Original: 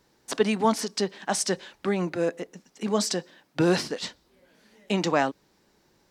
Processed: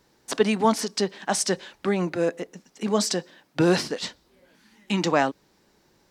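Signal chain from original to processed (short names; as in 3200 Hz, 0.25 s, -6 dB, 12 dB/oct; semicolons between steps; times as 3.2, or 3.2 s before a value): spectral gain 4.56–5.02, 370–780 Hz -12 dB; gain +2 dB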